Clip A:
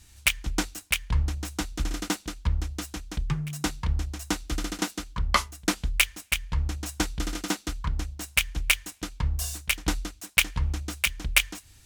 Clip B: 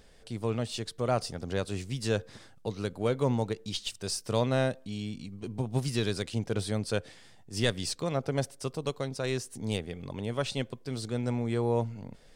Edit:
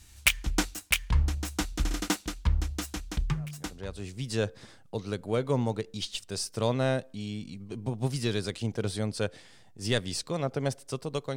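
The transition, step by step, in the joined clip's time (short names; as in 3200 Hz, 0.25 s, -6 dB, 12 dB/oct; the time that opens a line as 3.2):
clip A
3.74 switch to clip B from 1.46 s, crossfade 1.04 s quadratic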